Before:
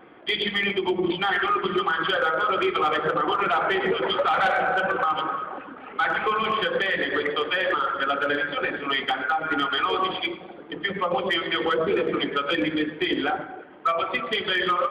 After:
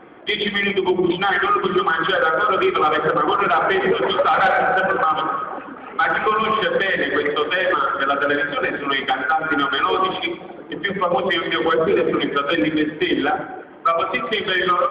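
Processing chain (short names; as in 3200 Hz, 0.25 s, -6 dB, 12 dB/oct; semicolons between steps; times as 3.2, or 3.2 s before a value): LPF 2700 Hz 6 dB/oct; gain +6 dB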